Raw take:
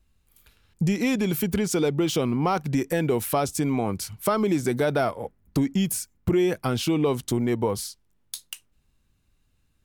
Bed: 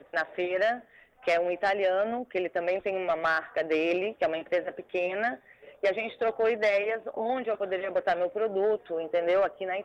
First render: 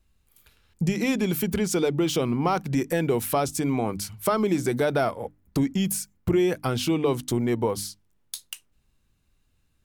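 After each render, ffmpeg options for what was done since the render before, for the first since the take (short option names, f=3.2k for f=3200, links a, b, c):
-af "bandreject=f=50:t=h:w=6,bandreject=f=100:t=h:w=6,bandreject=f=150:t=h:w=6,bandreject=f=200:t=h:w=6,bandreject=f=250:t=h:w=6,bandreject=f=300:t=h:w=6"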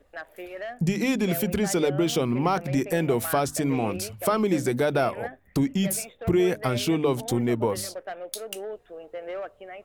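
-filter_complex "[1:a]volume=-9.5dB[a];[0:a][a]amix=inputs=2:normalize=0"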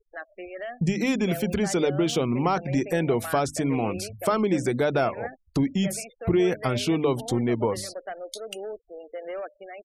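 -filter_complex "[0:a]acrossover=split=8400[a][b];[b]acompressor=threshold=-40dB:ratio=4:attack=1:release=60[c];[a][c]amix=inputs=2:normalize=0,afftfilt=real='re*gte(hypot(re,im),0.00891)':imag='im*gte(hypot(re,im),0.00891)':win_size=1024:overlap=0.75"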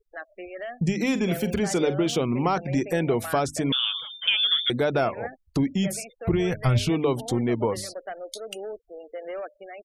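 -filter_complex "[0:a]asplit=3[a][b][c];[a]afade=t=out:st=1.12:d=0.02[d];[b]asplit=2[e][f];[f]adelay=45,volume=-13dB[g];[e][g]amix=inputs=2:normalize=0,afade=t=in:st=1.12:d=0.02,afade=t=out:st=2.08:d=0.02[h];[c]afade=t=in:st=2.08:d=0.02[i];[d][h][i]amix=inputs=3:normalize=0,asettb=1/sr,asplit=3[j][k][l];[j]atrim=end=3.724[m];[k]atrim=start=3.72:end=4.7,asetpts=PTS-STARTPTS,afade=t=in:d=0.004:c=qsin,afade=t=out:st=0.976:d=0.004:c=qsin,lowpass=f=3.1k:t=q:w=0.5098,lowpass=f=3.1k:t=q:w=0.6013,lowpass=f=3.1k:t=q:w=0.9,lowpass=f=3.1k:t=q:w=2.563,afreqshift=-3700[n];[l]atrim=start=4.696[o];[m][n]acrossfade=d=0.004:c1=hsin:c2=qsin[p];[p][o]acrossfade=d=0.004:c1=qsin:c2=hsin,asplit=3[q][r][s];[q]afade=t=out:st=6.32:d=0.02[t];[r]asubboost=boost=9:cutoff=100,afade=t=in:st=6.32:d=0.02,afade=t=out:st=6.89:d=0.02[u];[s]afade=t=in:st=6.89:d=0.02[v];[t][u][v]amix=inputs=3:normalize=0"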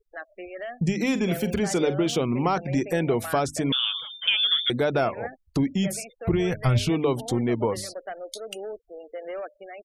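-af anull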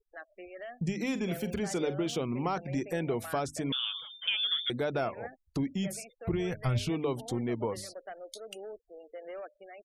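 -af "volume=-8dB"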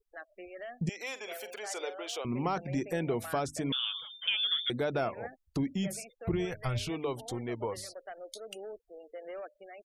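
-filter_complex "[0:a]asettb=1/sr,asplit=3[a][b][c];[a]atrim=end=0.894[d];[b]atrim=start=0.89:end=2.25,asetpts=PTS-STARTPTS,afade=t=in:d=0.004:c=qsin,afade=t=out:st=1.356:d=0.004:c=qsin,highpass=f=530:w=0.5412,highpass=f=530:w=1.3066[e];[c]atrim=start=2.246[f];[d][e]acrossfade=d=0.004:c1=hsin:c2=qsin[g];[g][f]acrossfade=d=0.004:c1=qsin:c2=hsin,asettb=1/sr,asplit=3[h][i][j];[h]atrim=end=6.454[k];[i]atrim=start=6.45:end=8.18,asetpts=PTS-STARTPTS,afade=t=in:d=0.004:c=qsin,afade=t=out:st=1.726:d=0.004:c=qsin,equalizer=f=200:t=o:w=1.5:g=-8[l];[j]atrim=start=8.176[m];[k][l]acrossfade=d=0.004:c1=hsin:c2=qsin[n];[n][m]acrossfade=d=0.004:c1=qsin:c2=hsin"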